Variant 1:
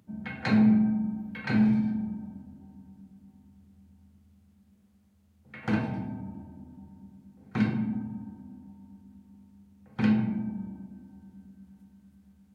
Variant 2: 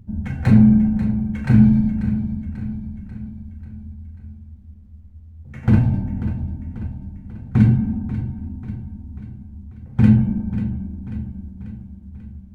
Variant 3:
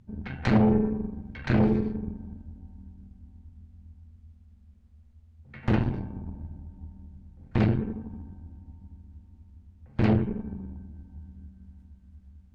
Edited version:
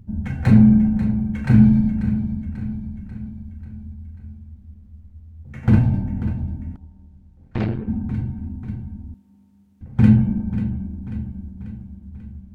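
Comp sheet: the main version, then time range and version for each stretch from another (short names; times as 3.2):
2
6.76–7.88 from 3
9.14–9.81 from 1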